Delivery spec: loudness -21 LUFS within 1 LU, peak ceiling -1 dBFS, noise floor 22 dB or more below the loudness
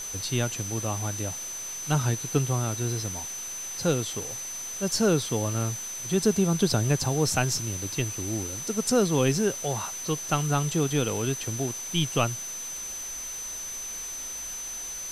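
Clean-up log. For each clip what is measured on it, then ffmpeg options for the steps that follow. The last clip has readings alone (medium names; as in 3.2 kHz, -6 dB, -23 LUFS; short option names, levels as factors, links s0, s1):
steady tone 6.1 kHz; tone level -34 dBFS; noise floor -36 dBFS; noise floor target -50 dBFS; loudness -27.5 LUFS; peak level -9.5 dBFS; loudness target -21.0 LUFS
-> -af "bandreject=f=6100:w=30"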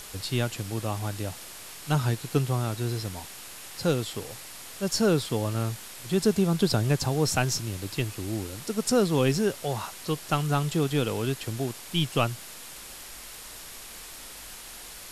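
steady tone not found; noise floor -43 dBFS; noise floor target -50 dBFS
-> -af "afftdn=nr=7:nf=-43"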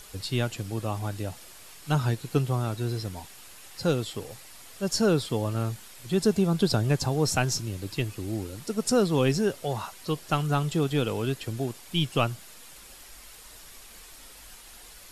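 noise floor -48 dBFS; noise floor target -50 dBFS
-> -af "afftdn=nr=6:nf=-48"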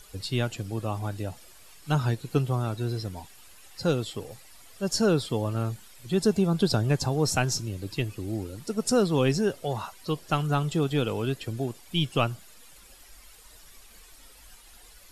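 noise floor -52 dBFS; loudness -28.0 LUFS; peak level -9.5 dBFS; loudness target -21.0 LUFS
-> -af "volume=2.24"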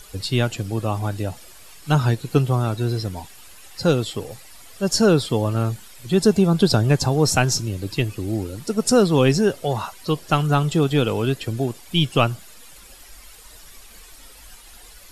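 loudness -21.0 LUFS; peak level -2.5 dBFS; noise floor -45 dBFS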